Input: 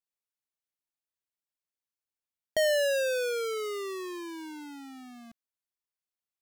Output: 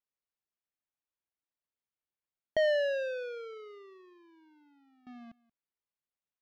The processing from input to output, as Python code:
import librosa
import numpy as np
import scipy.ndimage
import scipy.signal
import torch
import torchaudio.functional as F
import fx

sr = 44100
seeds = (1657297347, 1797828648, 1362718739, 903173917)

y = fx.air_absorb(x, sr, metres=270.0)
y = y + 10.0 ** (-23.0 / 20.0) * np.pad(y, (int(180 * sr / 1000.0), 0))[:len(y)]
y = fx.upward_expand(y, sr, threshold_db=-39.0, expansion=2.5, at=(2.66, 5.07))